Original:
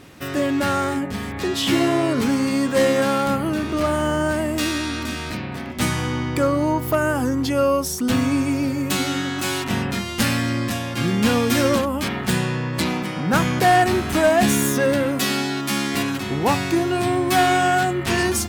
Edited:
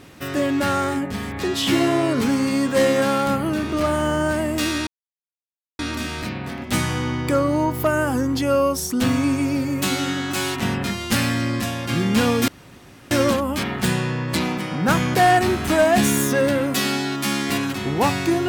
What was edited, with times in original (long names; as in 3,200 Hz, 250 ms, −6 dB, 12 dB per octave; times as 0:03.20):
0:04.87: splice in silence 0.92 s
0:11.56: splice in room tone 0.63 s